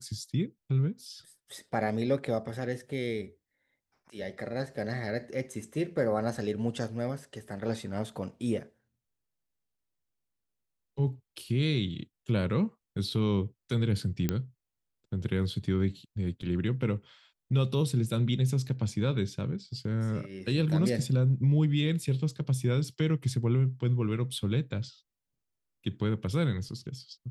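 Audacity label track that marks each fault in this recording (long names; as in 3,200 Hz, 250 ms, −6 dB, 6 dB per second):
14.290000	14.290000	click −14 dBFS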